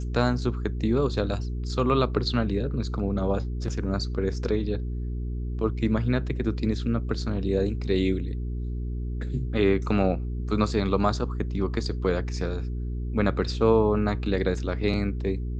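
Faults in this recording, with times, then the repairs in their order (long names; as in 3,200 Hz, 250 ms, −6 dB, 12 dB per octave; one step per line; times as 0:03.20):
mains hum 60 Hz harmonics 7 −30 dBFS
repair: hum removal 60 Hz, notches 7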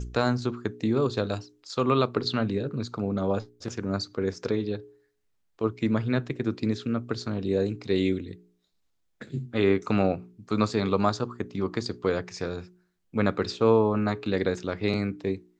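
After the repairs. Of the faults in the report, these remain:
none of them is left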